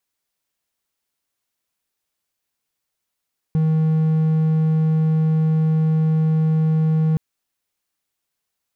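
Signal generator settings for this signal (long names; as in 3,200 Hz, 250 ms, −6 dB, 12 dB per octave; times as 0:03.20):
tone triangle 158 Hz −12.5 dBFS 3.62 s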